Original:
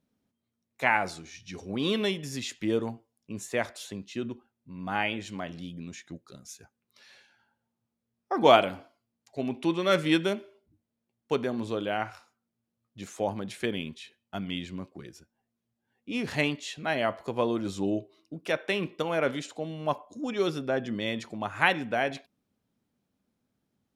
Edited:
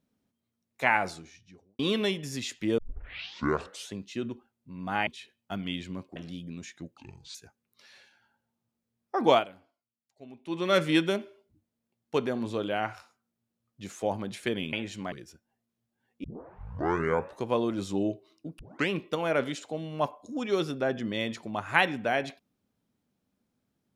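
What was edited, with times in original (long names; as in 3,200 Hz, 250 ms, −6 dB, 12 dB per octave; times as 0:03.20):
0:01.01–0:01.79: fade out and dull
0:02.78: tape start 1.15 s
0:05.07–0:05.46: swap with 0:13.90–0:14.99
0:06.27–0:06.52: play speed 66%
0:08.43–0:09.82: duck −16.5 dB, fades 0.20 s
0:16.11: tape start 1.23 s
0:18.46: tape start 0.31 s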